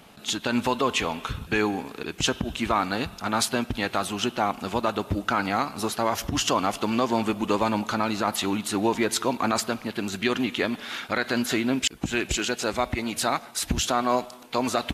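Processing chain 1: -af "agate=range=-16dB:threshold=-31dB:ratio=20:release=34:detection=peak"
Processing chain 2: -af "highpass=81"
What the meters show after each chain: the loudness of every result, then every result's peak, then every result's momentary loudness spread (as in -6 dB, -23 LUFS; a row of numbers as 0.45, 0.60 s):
-27.0, -26.0 LUFS; -9.5, -9.5 dBFS; 5, 4 LU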